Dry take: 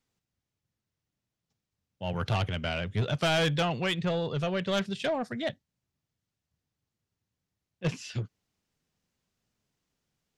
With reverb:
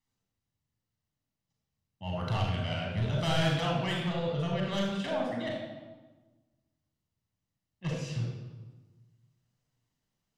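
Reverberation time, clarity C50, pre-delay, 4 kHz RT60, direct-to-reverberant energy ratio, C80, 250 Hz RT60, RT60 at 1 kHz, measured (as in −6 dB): 1.3 s, 0.5 dB, 34 ms, 0.95 s, −2.0 dB, 3.5 dB, 1.6 s, 1.3 s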